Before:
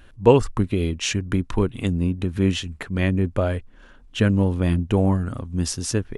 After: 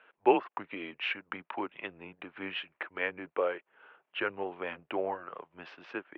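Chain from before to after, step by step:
single-sideband voice off tune −95 Hz 560–2,900 Hz
level −3 dB

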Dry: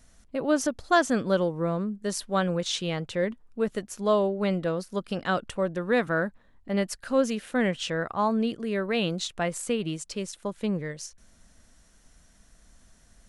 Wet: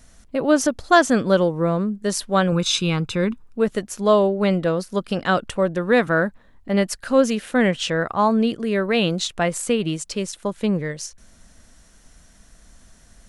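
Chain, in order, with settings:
0:02.52–0:03.44: comb filter 0.8 ms, depth 64%
level +7 dB

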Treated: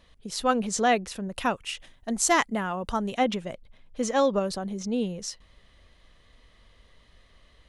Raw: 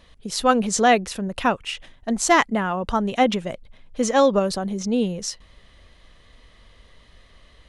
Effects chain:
0:01.32–0:03.15: high-shelf EQ 7,000 Hz +11 dB
level −6 dB

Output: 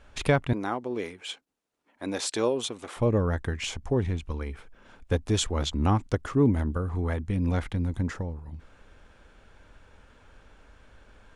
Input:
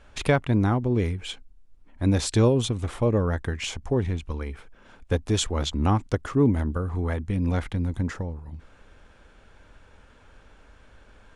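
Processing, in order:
0:00.53–0:02.97: high-pass filter 390 Hz 12 dB per octave
level −1.5 dB

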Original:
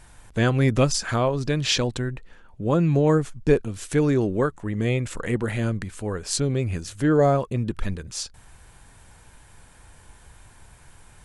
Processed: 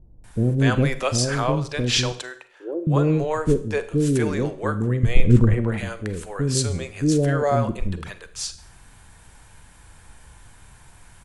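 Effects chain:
0:02.12–0:02.87: elliptic high-pass filter 340 Hz, stop band 40 dB
0:05.03–0:05.54: spectral tilt −4 dB per octave
multiband delay without the direct sound lows, highs 240 ms, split 480 Hz
four-comb reverb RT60 0.51 s, combs from 33 ms, DRR 12 dB
0:06.70–0:07.18: dynamic equaliser 6,800 Hz, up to +6 dB, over −50 dBFS, Q 1.2
level +1.5 dB

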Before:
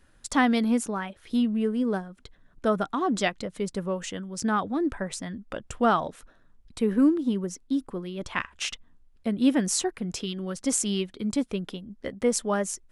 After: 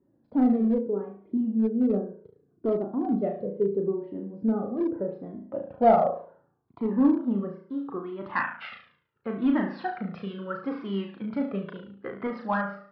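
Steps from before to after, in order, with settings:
high-pass filter 120 Hz 24 dB per octave
on a send: flutter between parallel walls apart 6.1 metres, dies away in 0.5 s
on the sum: low-pass filter sweep 410 Hz → 1,400 Hz, 0:04.61–0:08.27
in parallel at −5.5 dB: gain into a clipping stage and back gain 15.5 dB
on the sum: downsampling to 11,025 Hz
flanger whose copies keep moving one way falling 0.73 Hz
level −1.5 dB

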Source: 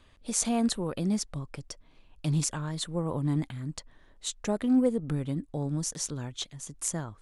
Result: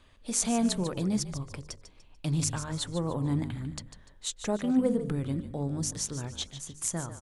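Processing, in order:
hum removal 50.26 Hz, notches 11
echo with shifted repeats 147 ms, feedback 35%, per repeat −46 Hz, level −11.5 dB

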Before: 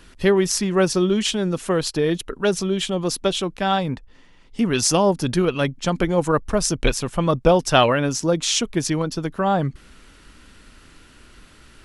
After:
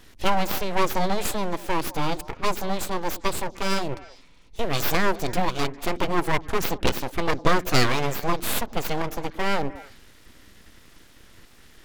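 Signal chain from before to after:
full-wave rectification
formants moved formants +3 semitones
echo through a band-pass that steps 101 ms, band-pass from 260 Hz, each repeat 1.4 octaves, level −11.5 dB
level −2 dB

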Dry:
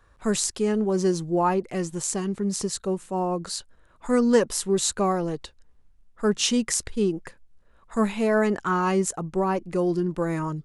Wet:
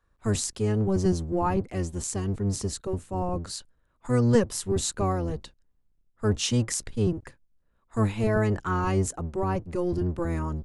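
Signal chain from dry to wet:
sub-octave generator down 1 octave, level +3 dB
noise gate −43 dBFS, range −9 dB
level −4.5 dB

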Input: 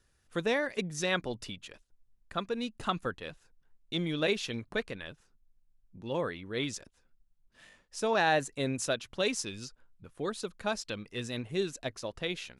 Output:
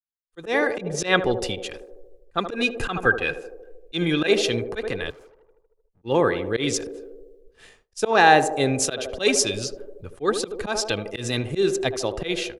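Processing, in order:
0:00.73–0:01.37: high-shelf EQ 6,600 Hz −9 dB
on a send: feedback echo with a band-pass in the loop 77 ms, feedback 80%, band-pass 470 Hz, level −9.5 dB
on the sum: automatic gain control gain up to 14 dB
0:05.10–0:06.02: tube saturation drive 45 dB, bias 0.7
comb filter 2.5 ms, depth 34%
volume swells 107 ms
downward expander −42 dBFS
in parallel at 0 dB: downward compressor, threshold −27 dBFS, peak gain reduction 16.5 dB
0:02.54–0:04.27: on the sum: hollow resonant body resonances 1,600/2,500 Hz, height 13 dB, ringing for 30 ms
multiband upward and downward expander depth 40%
level −4.5 dB

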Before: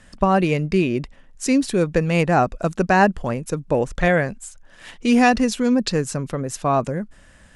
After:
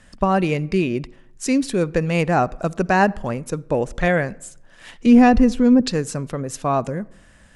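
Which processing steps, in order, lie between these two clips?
0:05.06–0:05.81: spectral tilt −3 dB per octave
on a send: convolution reverb RT60 0.80 s, pre-delay 46 ms, DRR 23 dB
on the sum: level −1 dB

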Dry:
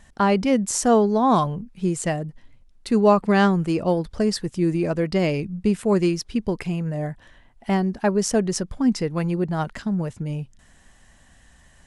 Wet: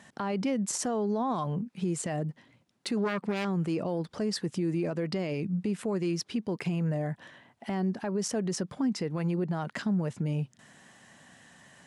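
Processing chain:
0:02.97–0:03.45: phase distortion by the signal itself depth 0.43 ms
high-pass filter 130 Hz 24 dB per octave
high-shelf EQ 7,300 Hz −6.5 dB
downward compressor 3 to 1, threshold −27 dBFS, peak gain reduction 11 dB
brickwall limiter −24.5 dBFS, peak gain reduction 10.5 dB
level +2.5 dB

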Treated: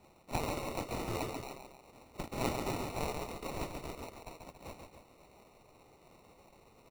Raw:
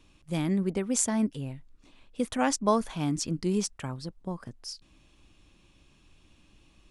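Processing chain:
gate on every frequency bin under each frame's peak −20 dB weak
decimation without filtering 27×
loudspeakers that aren't time-aligned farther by 47 metres −5 dB, 96 metres −11 dB
level +6.5 dB

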